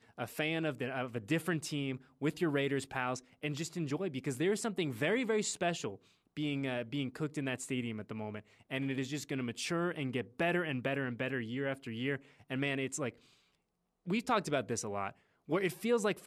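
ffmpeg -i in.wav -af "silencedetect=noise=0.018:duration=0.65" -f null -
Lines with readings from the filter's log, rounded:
silence_start: 13.09
silence_end: 14.08 | silence_duration: 0.99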